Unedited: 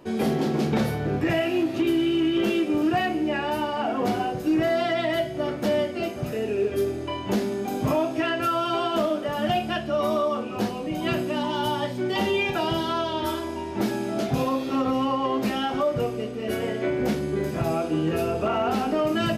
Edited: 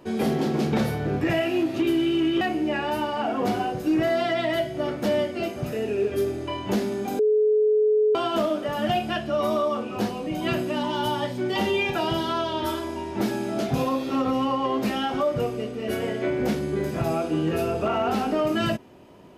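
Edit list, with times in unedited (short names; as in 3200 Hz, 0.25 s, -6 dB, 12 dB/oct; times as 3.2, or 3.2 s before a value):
2.41–3.01 cut
7.79–8.75 bleep 427 Hz -16.5 dBFS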